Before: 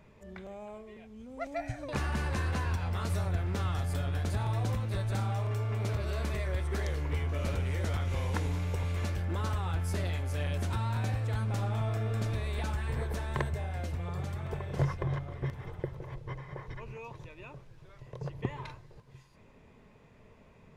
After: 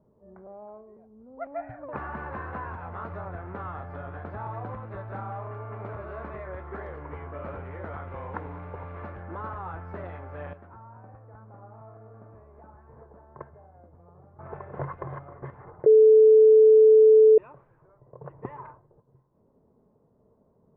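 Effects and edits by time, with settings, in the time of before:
10.53–14.39 s: gate -28 dBFS, range -11 dB
15.86–17.38 s: bleep 436 Hz -11 dBFS
whole clip: level-controlled noise filter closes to 390 Hz, open at -27.5 dBFS; low-pass 1.3 kHz 24 dB/octave; tilt EQ +4 dB/octave; trim +4.5 dB

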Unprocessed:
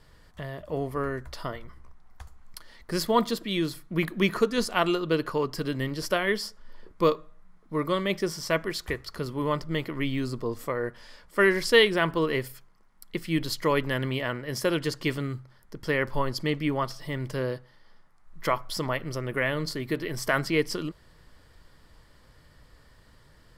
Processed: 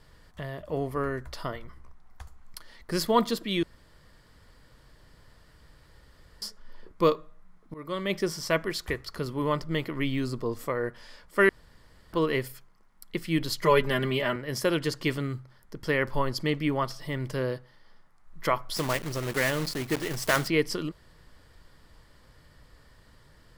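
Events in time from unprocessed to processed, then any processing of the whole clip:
3.63–6.42 s: room tone
7.74–8.18 s: fade in, from -22 dB
11.49–12.13 s: room tone
13.63–14.36 s: comb 5 ms, depth 89%
18.76–20.48 s: block-companded coder 3-bit

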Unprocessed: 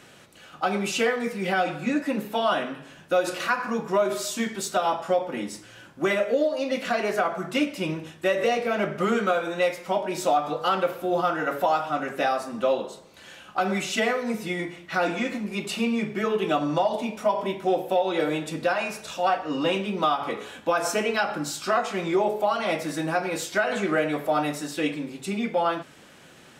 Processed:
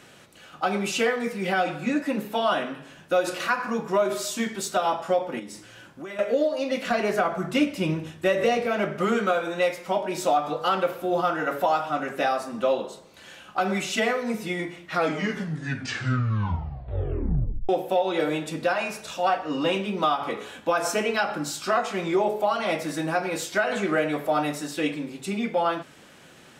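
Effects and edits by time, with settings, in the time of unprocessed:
5.39–6.19 s: compression 4:1, threshold -36 dBFS
6.90–8.66 s: bass shelf 170 Hz +10 dB
14.84 s: tape stop 2.85 s

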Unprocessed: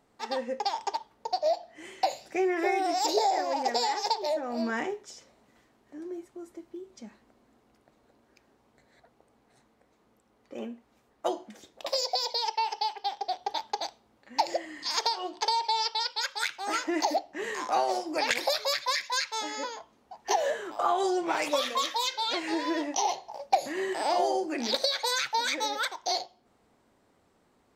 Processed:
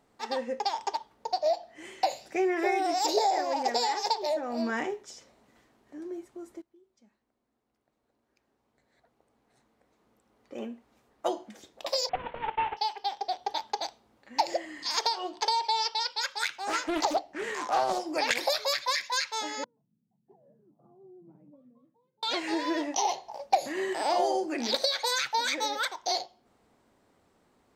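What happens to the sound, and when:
6.62–10.57 s: fade in quadratic, from -19 dB
12.09–12.77 s: CVSD coder 16 kbps
15.84–17.99 s: loudspeaker Doppler distortion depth 0.44 ms
19.64–22.23 s: Butterworth band-pass 160 Hz, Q 2.1

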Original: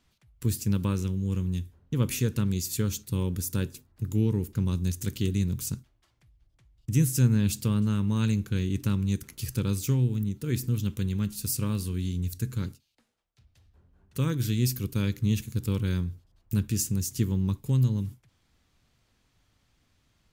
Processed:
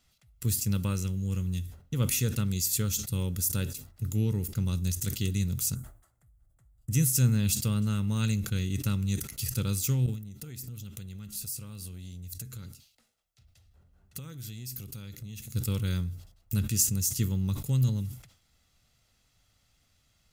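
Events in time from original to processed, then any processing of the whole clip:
0.82–1.44 s: band-stop 3.6 kHz
5.75–6.91 s: high-order bell 3.6 kHz -16 dB
10.06–15.55 s: compression, threshold -37 dBFS
whole clip: treble shelf 3.4 kHz +9 dB; comb 1.5 ms, depth 38%; decay stretcher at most 110 dB/s; trim -3.5 dB

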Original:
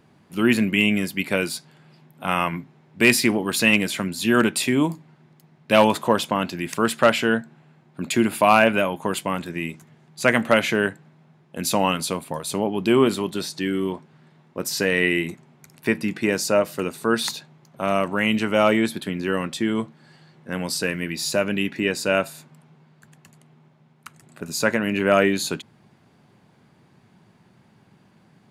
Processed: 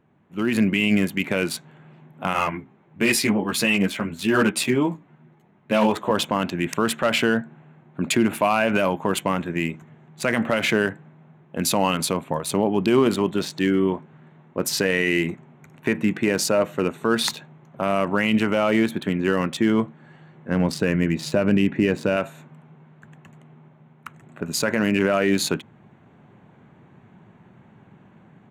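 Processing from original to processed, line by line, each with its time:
2.33–6.11 s: three-phase chorus
20.51–22.17 s: tilt EQ -2 dB/octave
whole clip: local Wiener filter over 9 samples; peak limiter -13.5 dBFS; level rider gain up to 11.5 dB; trim -6 dB

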